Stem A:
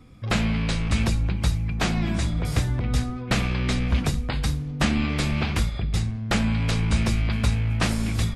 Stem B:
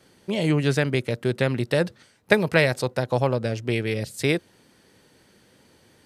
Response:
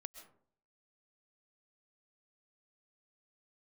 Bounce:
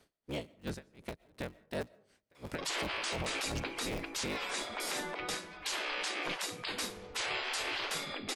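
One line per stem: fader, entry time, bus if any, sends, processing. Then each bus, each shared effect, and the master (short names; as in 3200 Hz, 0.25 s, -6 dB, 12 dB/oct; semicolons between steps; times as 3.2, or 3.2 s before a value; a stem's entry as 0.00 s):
+1.5 dB, 2.35 s, no send, spectral gate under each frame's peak -20 dB weak
2.32 s -9 dB -> 2.92 s -1 dB, 0.00 s, send -10.5 dB, cycle switcher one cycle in 3, inverted; compressor, threshold -23 dBFS, peak gain reduction 11.5 dB; dB-linear tremolo 2.8 Hz, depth 37 dB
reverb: on, RT60 0.60 s, pre-delay 90 ms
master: limiter -26 dBFS, peak gain reduction 12 dB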